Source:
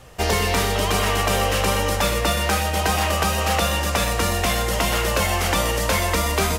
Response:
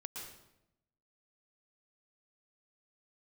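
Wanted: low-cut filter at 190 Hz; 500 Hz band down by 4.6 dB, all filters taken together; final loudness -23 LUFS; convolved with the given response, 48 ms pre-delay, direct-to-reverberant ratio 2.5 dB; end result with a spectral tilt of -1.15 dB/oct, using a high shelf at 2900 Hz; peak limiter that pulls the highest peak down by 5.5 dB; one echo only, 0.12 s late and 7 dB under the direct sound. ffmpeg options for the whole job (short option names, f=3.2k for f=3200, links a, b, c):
-filter_complex "[0:a]highpass=190,equalizer=f=500:t=o:g=-6,highshelf=f=2.9k:g=8.5,alimiter=limit=-9dB:level=0:latency=1,aecho=1:1:120:0.447,asplit=2[a][b];[1:a]atrim=start_sample=2205,adelay=48[c];[b][c]afir=irnorm=-1:irlink=0,volume=0dB[d];[a][d]amix=inputs=2:normalize=0,volume=-6.5dB"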